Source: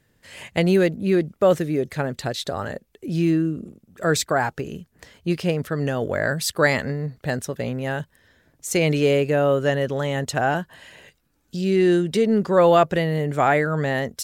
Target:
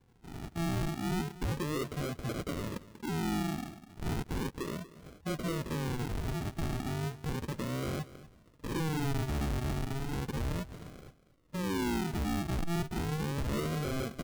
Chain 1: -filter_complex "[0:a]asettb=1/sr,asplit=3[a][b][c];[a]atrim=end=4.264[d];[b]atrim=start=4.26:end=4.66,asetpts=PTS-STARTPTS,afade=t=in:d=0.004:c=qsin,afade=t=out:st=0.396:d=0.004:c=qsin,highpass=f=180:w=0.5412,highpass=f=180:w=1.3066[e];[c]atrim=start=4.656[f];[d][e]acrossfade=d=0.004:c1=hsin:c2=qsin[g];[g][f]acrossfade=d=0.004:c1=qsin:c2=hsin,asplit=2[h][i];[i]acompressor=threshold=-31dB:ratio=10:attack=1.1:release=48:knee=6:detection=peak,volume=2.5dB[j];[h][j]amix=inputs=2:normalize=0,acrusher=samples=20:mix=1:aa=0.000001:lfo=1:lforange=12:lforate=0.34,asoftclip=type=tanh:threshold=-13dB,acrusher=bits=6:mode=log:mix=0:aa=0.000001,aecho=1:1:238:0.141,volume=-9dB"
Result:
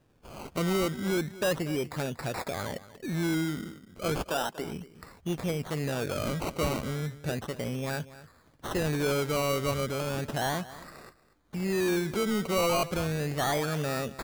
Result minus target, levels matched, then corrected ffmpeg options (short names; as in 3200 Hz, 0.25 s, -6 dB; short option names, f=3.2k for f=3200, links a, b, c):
decimation with a swept rate: distortion -18 dB; soft clip: distortion -7 dB
-filter_complex "[0:a]asettb=1/sr,asplit=3[a][b][c];[a]atrim=end=4.264[d];[b]atrim=start=4.26:end=4.66,asetpts=PTS-STARTPTS,afade=t=in:d=0.004:c=qsin,afade=t=out:st=0.396:d=0.004:c=qsin,highpass=f=180:w=0.5412,highpass=f=180:w=1.3066[e];[c]atrim=start=4.656[f];[d][e]acrossfade=d=0.004:c1=hsin:c2=qsin[g];[g][f]acrossfade=d=0.004:c1=qsin:c2=hsin,asplit=2[h][i];[i]acompressor=threshold=-31dB:ratio=10:attack=1.1:release=48:knee=6:detection=peak,volume=2.5dB[j];[h][j]amix=inputs=2:normalize=0,acrusher=samples=68:mix=1:aa=0.000001:lfo=1:lforange=40.8:lforate=0.34,asoftclip=type=tanh:threshold=-20.5dB,acrusher=bits=6:mode=log:mix=0:aa=0.000001,aecho=1:1:238:0.141,volume=-9dB"